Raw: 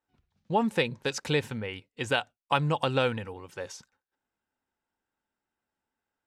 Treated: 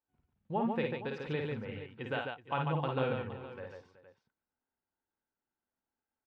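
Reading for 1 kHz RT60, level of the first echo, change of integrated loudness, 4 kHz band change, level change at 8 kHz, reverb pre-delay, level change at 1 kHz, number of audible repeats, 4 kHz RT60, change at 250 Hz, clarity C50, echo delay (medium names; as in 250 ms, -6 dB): no reverb, -4.0 dB, -7.0 dB, -13.5 dB, under -30 dB, no reverb, -6.5 dB, 4, no reverb, -5.0 dB, no reverb, 52 ms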